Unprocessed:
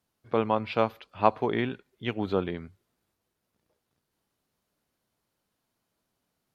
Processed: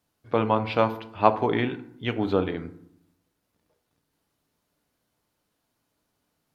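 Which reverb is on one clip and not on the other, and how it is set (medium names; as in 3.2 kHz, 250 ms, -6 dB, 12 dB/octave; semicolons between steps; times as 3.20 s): FDN reverb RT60 0.69 s, low-frequency decay 1.4×, high-frequency decay 0.5×, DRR 9 dB; trim +3 dB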